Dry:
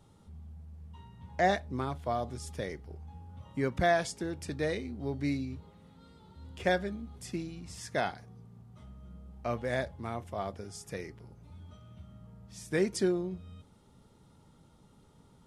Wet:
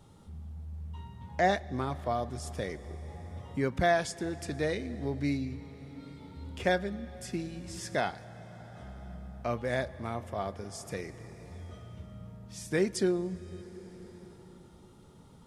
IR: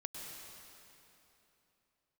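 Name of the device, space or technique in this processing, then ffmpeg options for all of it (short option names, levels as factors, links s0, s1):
ducked reverb: -filter_complex "[0:a]asplit=3[s0][s1][s2];[1:a]atrim=start_sample=2205[s3];[s1][s3]afir=irnorm=-1:irlink=0[s4];[s2]apad=whole_len=681827[s5];[s4][s5]sidechaincompress=threshold=0.0112:ratio=8:attack=6.2:release=905,volume=0.944[s6];[s0][s6]amix=inputs=2:normalize=0"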